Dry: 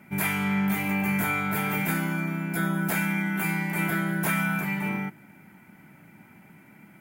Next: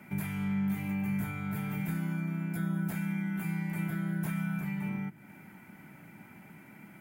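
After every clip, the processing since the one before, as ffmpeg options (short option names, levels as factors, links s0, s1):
-filter_complex "[0:a]acrossover=split=190[s0][s1];[s1]acompressor=threshold=0.00631:ratio=4[s2];[s0][s2]amix=inputs=2:normalize=0"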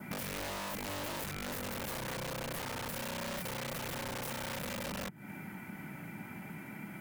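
-af "adynamicequalizer=threshold=0.00112:dfrequency=2400:dqfactor=3.6:tfrequency=2400:tqfactor=3.6:attack=5:release=100:ratio=0.375:range=2:mode=cutabove:tftype=bell,aeval=exprs='(mod(37.6*val(0)+1,2)-1)/37.6':c=same,acompressor=threshold=0.00631:ratio=10,volume=2.11"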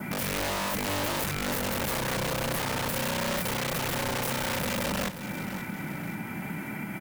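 -filter_complex "[0:a]asplit=2[s0][s1];[s1]alimiter=level_in=4.73:limit=0.0631:level=0:latency=1:release=193,volume=0.211,volume=1.19[s2];[s0][s2]amix=inputs=2:normalize=0,aecho=1:1:531|1062|1593|2124:0.251|0.105|0.0443|0.0186,volume=1.58"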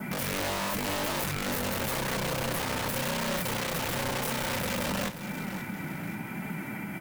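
-af "flanger=delay=4.5:depth=7.4:regen=-50:speed=0.93:shape=sinusoidal,volume=1.41"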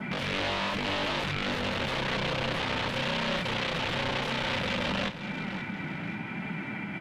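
-af "lowpass=f=3400:t=q:w=1.8"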